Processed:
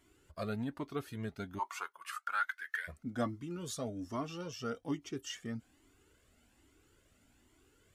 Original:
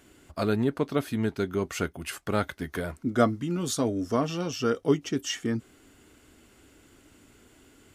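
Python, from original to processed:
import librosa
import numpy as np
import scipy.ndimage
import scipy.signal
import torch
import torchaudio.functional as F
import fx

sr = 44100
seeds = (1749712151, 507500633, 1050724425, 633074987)

y = fx.highpass_res(x, sr, hz=fx.line((1.58, 870.0), (2.87, 1900.0)), q=10.0, at=(1.58, 2.87), fade=0.02)
y = fx.comb_cascade(y, sr, direction='rising', hz=1.2)
y = y * librosa.db_to_amplitude(-7.0)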